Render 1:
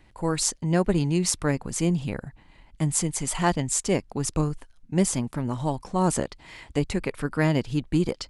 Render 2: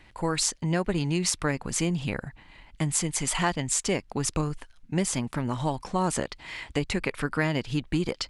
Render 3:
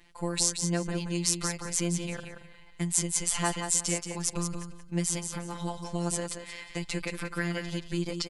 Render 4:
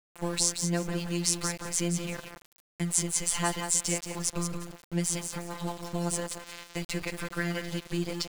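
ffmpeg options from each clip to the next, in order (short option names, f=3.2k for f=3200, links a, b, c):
-af "equalizer=f=2.4k:t=o:w=2.7:g=7,acompressor=threshold=-24dB:ratio=2.5"
-af "bass=f=250:g=1,treble=f=4k:g=7,afftfilt=real='hypot(re,im)*cos(PI*b)':imag='0':win_size=1024:overlap=0.75,aecho=1:1:178|356|534:0.447|0.103|0.0236,volume=-3dB"
-af "aeval=exprs='val(0)*gte(abs(val(0)),0.0112)':c=same"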